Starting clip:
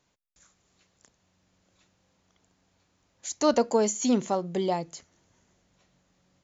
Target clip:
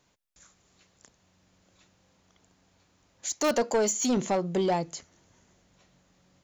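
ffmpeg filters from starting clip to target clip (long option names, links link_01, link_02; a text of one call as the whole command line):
ffmpeg -i in.wav -filter_complex "[0:a]asplit=2[link_01][link_02];[link_02]aeval=exprs='(mod(3.98*val(0)+1,2)-1)/3.98':channel_layout=same,volume=-5.5dB[link_03];[link_01][link_03]amix=inputs=2:normalize=0,asettb=1/sr,asplit=3[link_04][link_05][link_06];[link_04]atrim=end=3.334[link_07];[link_05]atrim=start=3.33:end=4.17,asetpts=PTS-STARTPTS,afade=type=in:duration=0.004:curve=qsin,afade=type=out:start_time=0.836:duration=0.004:curve=qsin,lowshelf=frequency=210:gain=-10.5[link_08];[link_06]atrim=start=4.166[link_09];[link_07][link_08]acrossfade=duration=0.004:curve1=hsin:curve2=qsin[link_10];[link_10][link_09]acrossfade=duration=0.004:curve1=qsin:curve2=hsin,asoftclip=type=tanh:threshold=-19dB" out.wav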